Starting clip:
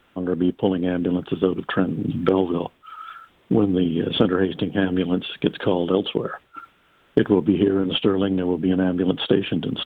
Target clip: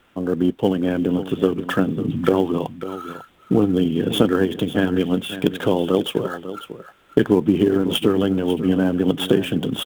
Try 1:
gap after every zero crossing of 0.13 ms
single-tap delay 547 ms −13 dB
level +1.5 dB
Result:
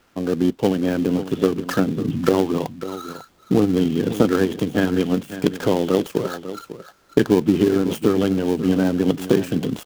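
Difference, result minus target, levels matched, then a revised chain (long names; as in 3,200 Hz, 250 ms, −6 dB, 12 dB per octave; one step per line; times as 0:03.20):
gap after every zero crossing: distortion +10 dB
gap after every zero crossing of 0.048 ms
single-tap delay 547 ms −13 dB
level +1.5 dB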